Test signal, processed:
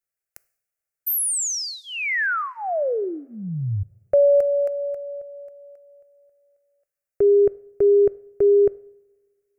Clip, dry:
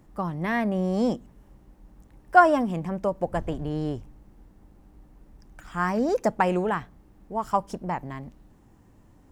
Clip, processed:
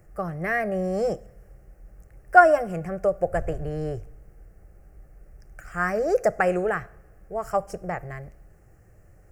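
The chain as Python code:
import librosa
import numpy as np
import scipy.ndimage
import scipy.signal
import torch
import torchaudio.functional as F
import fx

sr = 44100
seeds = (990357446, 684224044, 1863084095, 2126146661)

y = fx.fixed_phaser(x, sr, hz=960.0, stages=6)
y = fx.rev_double_slope(y, sr, seeds[0], early_s=0.63, late_s=1.9, knee_db=-16, drr_db=18.5)
y = F.gain(torch.from_numpy(y), 4.5).numpy()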